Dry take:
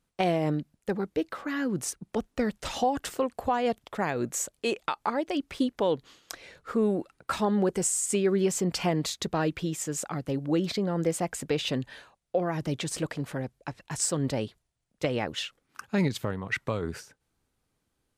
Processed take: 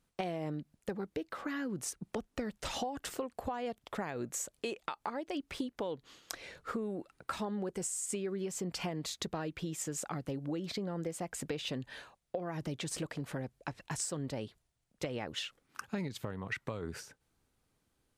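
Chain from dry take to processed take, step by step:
downward compressor 6 to 1, threshold −35 dBFS, peak gain reduction 14 dB

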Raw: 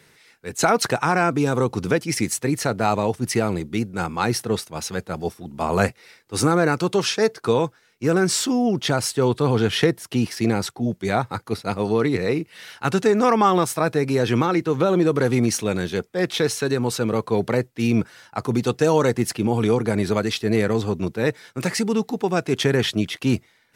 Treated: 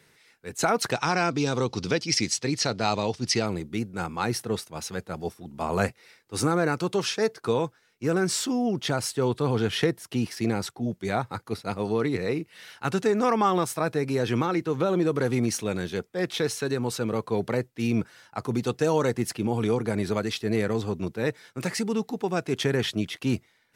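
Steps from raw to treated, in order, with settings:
0:00.92–0:03.46: drawn EQ curve 1,600 Hz 0 dB, 5,000 Hz +13 dB, 13,000 Hz −14 dB
level −5.5 dB

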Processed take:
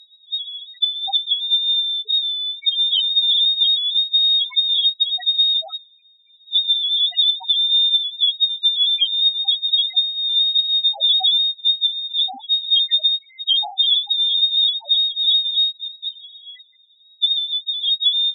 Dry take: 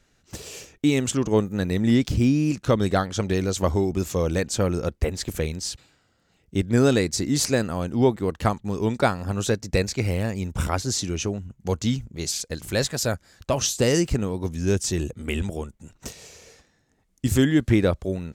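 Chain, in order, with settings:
running median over 9 samples
notch filter 500 Hz, Q 12
voice inversion scrambler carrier 3,800 Hz
parametric band 750 Hz +7.5 dB 0.6 octaves
downward compressor 12 to 1, threshold −22 dBFS, peak gain reduction 10 dB
spectral peaks only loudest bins 1
treble cut that deepens with the level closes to 1,400 Hz, closed at −30.5 dBFS
boost into a limiter +32.5 dB
level −8 dB

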